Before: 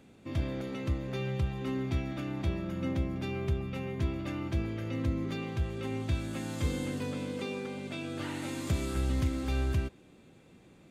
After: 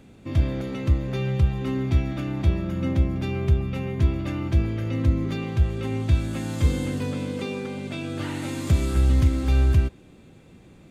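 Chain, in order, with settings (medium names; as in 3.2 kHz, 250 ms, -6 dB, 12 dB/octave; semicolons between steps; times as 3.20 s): bass shelf 120 Hz +9.5 dB; trim +5 dB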